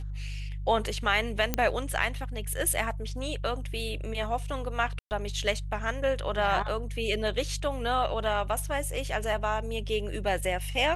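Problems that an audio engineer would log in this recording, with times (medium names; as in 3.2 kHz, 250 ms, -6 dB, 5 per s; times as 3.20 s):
hum 50 Hz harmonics 3 -35 dBFS
1.54 s: pop -10 dBFS
4.99–5.11 s: dropout 119 ms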